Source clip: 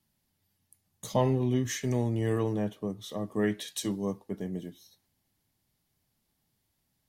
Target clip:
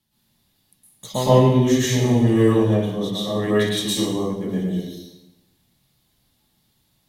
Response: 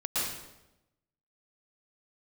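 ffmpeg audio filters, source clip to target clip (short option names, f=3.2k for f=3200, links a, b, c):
-filter_complex "[0:a]equalizer=f=3.6k:t=o:w=0.5:g=7[a];[1:a]atrim=start_sample=2205[b];[a][b]afir=irnorm=-1:irlink=0,volume=3dB"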